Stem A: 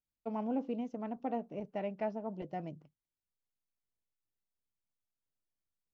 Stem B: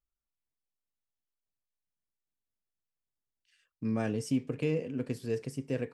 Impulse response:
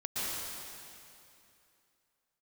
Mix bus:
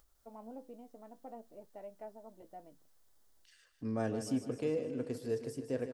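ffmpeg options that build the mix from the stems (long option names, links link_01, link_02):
-filter_complex "[0:a]flanger=delay=6.5:depth=4.8:regen=63:speed=0.52:shape=triangular,volume=-8dB[link_01];[1:a]acompressor=mode=upward:threshold=-48dB:ratio=2.5,volume=-2.5dB,asplit=2[link_02][link_03];[link_03]volume=-10.5dB,aecho=0:1:152|304|456|608|760|912|1064|1216:1|0.55|0.303|0.166|0.0915|0.0503|0.0277|0.0152[link_04];[link_01][link_02][link_04]amix=inputs=3:normalize=0,equalizer=frequency=160:width_type=o:width=0.67:gain=-10,equalizer=frequency=630:width_type=o:width=0.67:gain=3,equalizer=frequency=2500:width_type=o:width=0.67:gain=-9"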